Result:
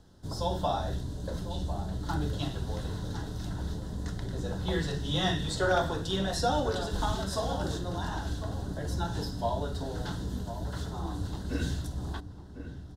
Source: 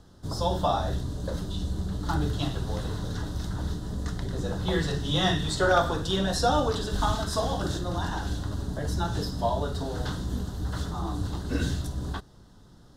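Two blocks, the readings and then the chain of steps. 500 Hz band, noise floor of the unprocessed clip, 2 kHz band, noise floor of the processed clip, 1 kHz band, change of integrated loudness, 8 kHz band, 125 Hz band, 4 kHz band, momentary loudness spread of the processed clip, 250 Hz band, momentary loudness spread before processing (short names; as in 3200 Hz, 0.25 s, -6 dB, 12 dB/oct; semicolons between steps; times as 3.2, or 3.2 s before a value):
-3.5 dB, -53 dBFS, -4.0 dB, -44 dBFS, -4.5 dB, -4.0 dB, -4.0 dB, -3.5 dB, -4.0 dB, 8 LU, -3.5 dB, 9 LU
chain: notch 1200 Hz, Q 10; outdoor echo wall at 180 m, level -10 dB; gain -4 dB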